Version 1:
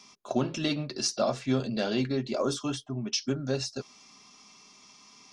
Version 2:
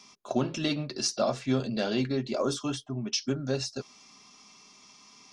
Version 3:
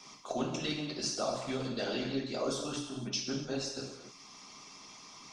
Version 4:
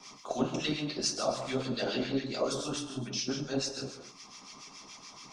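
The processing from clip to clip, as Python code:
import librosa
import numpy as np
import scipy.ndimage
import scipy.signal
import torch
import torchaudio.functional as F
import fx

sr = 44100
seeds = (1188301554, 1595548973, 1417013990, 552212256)

y1 = x
y2 = fx.rev_gated(y1, sr, seeds[0], gate_ms=320, shape='falling', drr_db=-3.0)
y2 = fx.hpss(y2, sr, part='harmonic', gain_db=-11)
y2 = fx.band_squash(y2, sr, depth_pct=40)
y2 = F.gain(torch.from_numpy(y2), -4.0).numpy()
y3 = fx.harmonic_tremolo(y2, sr, hz=7.0, depth_pct=70, crossover_hz=1200.0)
y3 = F.gain(torch.from_numpy(y3), 5.5).numpy()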